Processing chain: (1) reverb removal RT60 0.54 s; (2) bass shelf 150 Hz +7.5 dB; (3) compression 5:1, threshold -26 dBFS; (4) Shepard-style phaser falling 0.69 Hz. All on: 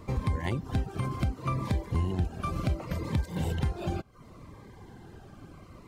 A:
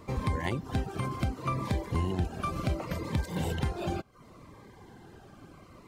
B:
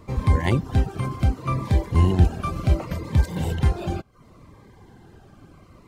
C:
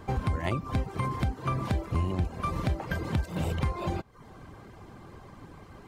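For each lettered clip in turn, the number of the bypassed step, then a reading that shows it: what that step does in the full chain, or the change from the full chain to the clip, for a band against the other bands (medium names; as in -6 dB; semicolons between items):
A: 2, 125 Hz band -4.0 dB; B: 3, crest factor change +2.0 dB; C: 4, 2 kHz band +3.0 dB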